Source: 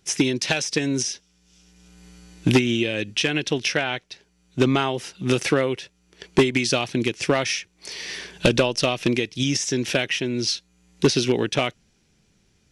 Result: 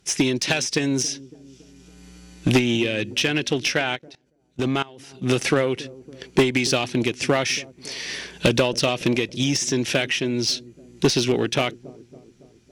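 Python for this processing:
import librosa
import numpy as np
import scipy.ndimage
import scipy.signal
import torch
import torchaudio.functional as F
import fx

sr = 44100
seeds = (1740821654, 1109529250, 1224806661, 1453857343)

y = fx.echo_wet_lowpass(x, sr, ms=279, feedback_pct=56, hz=490.0, wet_db=-19)
y = fx.cheby_harmonics(y, sr, harmonics=(2, 3, 5, 7), levels_db=(-21, -24, -20, -43), full_scale_db=-8.5)
y = fx.level_steps(y, sr, step_db=22, at=(3.95, 5.21), fade=0.02)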